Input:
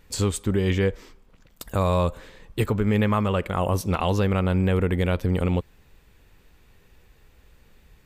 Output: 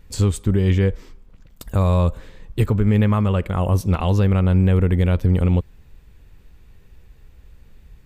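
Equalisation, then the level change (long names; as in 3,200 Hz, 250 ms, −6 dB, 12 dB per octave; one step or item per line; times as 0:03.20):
low-shelf EQ 200 Hz +11.5 dB
−1.5 dB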